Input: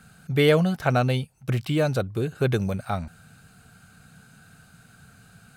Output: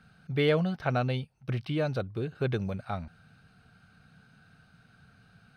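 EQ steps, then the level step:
Savitzky-Golay smoothing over 15 samples
−6.5 dB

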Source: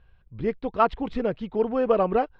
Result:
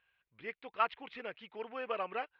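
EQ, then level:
resonant band-pass 2,400 Hz, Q 1.9
high-frequency loss of the air 54 metres
+1.0 dB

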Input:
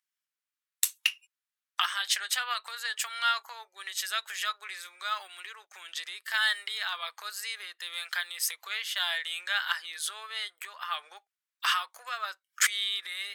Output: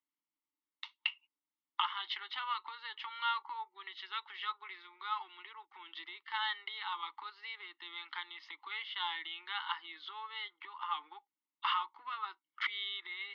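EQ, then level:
formant filter u
low-pass filter 3,400 Hz 24 dB per octave
phaser with its sweep stopped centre 2,400 Hz, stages 6
+18.0 dB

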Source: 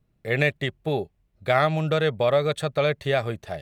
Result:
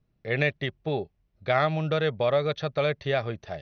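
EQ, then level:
linear-phase brick-wall low-pass 6,300 Hz
−3.0 dB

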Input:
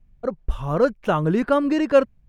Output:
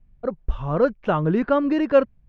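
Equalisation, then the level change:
high-frequency loss of the air 190 metres
0.0 dB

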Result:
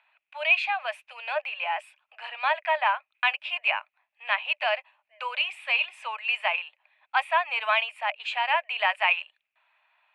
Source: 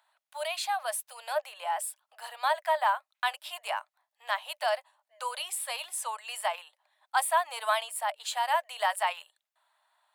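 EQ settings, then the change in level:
low-pass with resonance 2,500 Hz, resonance Q 10
0.0 dB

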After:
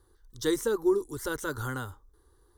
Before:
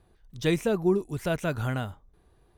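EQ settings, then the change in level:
high-shelf EQ 2,400 Hz +7 dB
phaser with its sweep stopped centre 670 Hz, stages 6
0.0 dB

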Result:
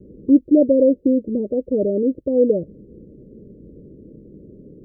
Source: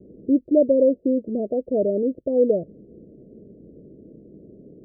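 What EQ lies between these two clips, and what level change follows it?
dynamic equaliser 300 Hz, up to +4 dB, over −33 dBFS, Q 3.5
Butterworth band-reject 680 Hz, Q 4.3
low-shelf EQ 96 Hz +10.5 dB
+1.5 dB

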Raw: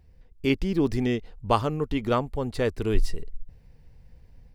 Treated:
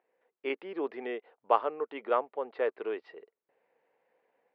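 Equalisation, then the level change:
high-pass filter 450 Hz 24 dB per octave
low-pass filter 2,800 Hz 12 dB per octave
high-frequency loss of the air 410 metres
0.0 dB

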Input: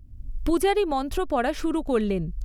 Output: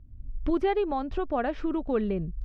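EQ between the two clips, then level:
low-pass filter 2,600 Hz 6 dB per octave
high-frequency loss of the air 160 metres
−3.0 dB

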